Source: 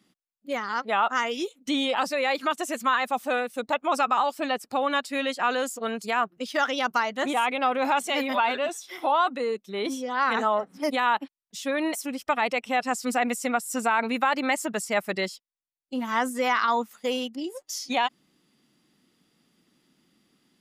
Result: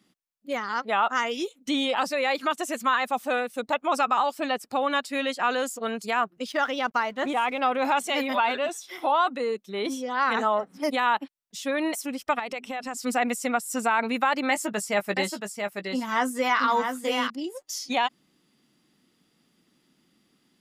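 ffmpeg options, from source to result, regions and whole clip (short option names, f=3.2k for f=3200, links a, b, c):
-filter_complex "[0:a]asettb=1/sr,asplit=3[a][b][c];[a]atrim=end=6.524[d];[b]atrim=start=6.52:end=7.6,asetpts=PTS-STARTPTS,afade=t=in:d=0.004:c=qsin,afade=t=out:st=1.076:d=0.004:c=qsin,aemphasis=mode=reproduction:type=50kf,aeval=exprs='sgn(val(0))*max(abs(val(0))-0.00178,0)':c=same[e];[c]atrim=start=7.596[f];[d][e]acrossfade=d=0.004:c1=hsin:c2=qsin[g];[g][f]acrossfade=d=0.004:c1=qsin:c2=hsin,asettb=1/sr,asplit=3[h][i][j];[h]atrim=end=12.394[k];[i]atrim=start=12.39:end=12.97,asetpts=PTS-STARTPTS,afade=t=in:d=0.004:c=qsin,afade=t=out:st=0.576:d=0.004:c=qsin,bandreject=f=50:t=h:w=6,bandreject=f=100:t=h:w=6,bandreject=f=150:t=h:w=6,bandreject=f=200:t=h:w=6,bandreject=f=250:t=h:w=6,bandreject=f=300:t=h:w=6,bandreject=f=350:t=h:w=6,bandreject=f=400:t=h:w=6,acompressor=threshold=-29dB:ratio=5:attack=3.2:release=140:knee=1:detection=peak[l];[j]atrim=start=12.966[m];[k][l]acrossfade=d=0.004:c1=hsin:c2=qsin[n];[n][m]acrossfade=d=0.004:c1=qsin:c2=hsin,asettb=1/sr,asplit=3[o][p][q];[o]atrim=end=14.494[r];[p]atrim=start=14.49:end=17.3,asetpts=PTS-STARTPTS,afade=t=in:d=0.004:c=qsin,afade=t=out:st=2.806:d=0.004:c=qsin,asplit=2[s][t];[t]adelay=15,volume=-9dB[u];[s][u]amix=inputs=2:normalize=0,atrim=end_sample=123921,aecho=1:1:676:0.531,atrim=end_sample=123921[v];[q]atrim=start=17.296[w];[r][v]acrossfade=d=0.004:c1=hsin:c2=qsin[x];[x][w]acrossfade=d=0.004:c1=qsin:c2=hsin"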